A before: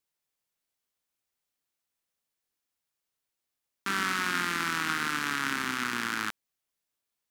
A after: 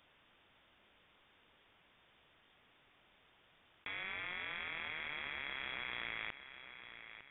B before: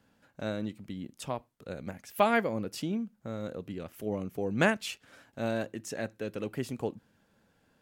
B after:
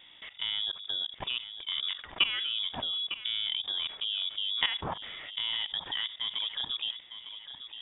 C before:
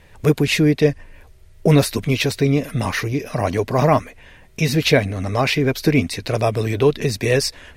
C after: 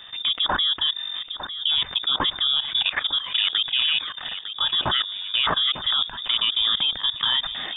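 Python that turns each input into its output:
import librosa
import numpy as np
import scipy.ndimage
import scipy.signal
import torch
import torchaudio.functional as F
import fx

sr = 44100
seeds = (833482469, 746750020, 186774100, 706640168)

p1 = fx.level_steps(x, sr, step_db=22)
p2 = p1 + fx.echo_feedback(p1, sr, ms=904, feedback_pct=28, wet_db=-22.0, dry=0)
p3 = fx.freq_invert(p2, sr, carrier_hz=3600)
y = fx.env_flatten(p3, sr, amount_pct=50)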